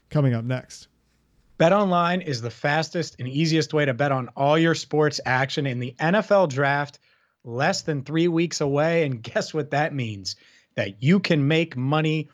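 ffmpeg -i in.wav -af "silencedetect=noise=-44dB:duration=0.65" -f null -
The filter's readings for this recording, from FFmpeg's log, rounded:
silence_start: 0.85
silence_end: 1.60 | silence_duration: 0.75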